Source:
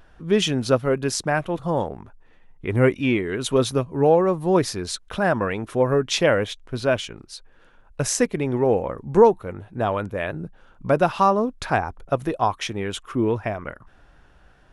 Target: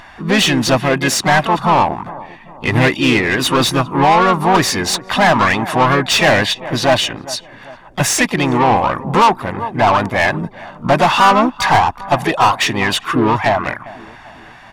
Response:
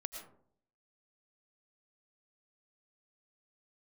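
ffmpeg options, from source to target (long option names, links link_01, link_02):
-filter_complex "[0:a]aecho=1:1:1.1:0.74,asplit=2[link_01][link_02];[link_02]adelay=399,lowpass=frequency=860:poles=1,volume=-21.5dB,asplit=2[link_03][link_04];[link_04]adelay=399,lowpass=frequency=860:poles=1,volume=0.5,asplit=2[link_05][link_06];[link_06]adelay=399,lowpass=frequency=860:poles=1,volume=0.5,asplit=2[link_07][link_08];[link_08]adelay=399,lowpass=frequency=860:poles=1,volume=0.5[link_09];[link_01][link_03][link_05][link_07][link_09]amix=inputs=5:normalize=0,asplit=2[link_10][link_11];[link_11]highpass=frequency=720:poles=1,volume=26dB,asoftclip=type=tanh:threshold=-3dB[link_12];[link_10][link_12]amix=inputs=2:normalize=0,lowpass=frequency=3600:poles=1,volume=-6dB,asplit=2[link_13][link_14];[link_14]asetrate=55563,aresample=44100,atempo=0.793701,volume=-6dB[link_15];[link_13][link_15]amix=inputs=2:normalize=0,volume=-1dB"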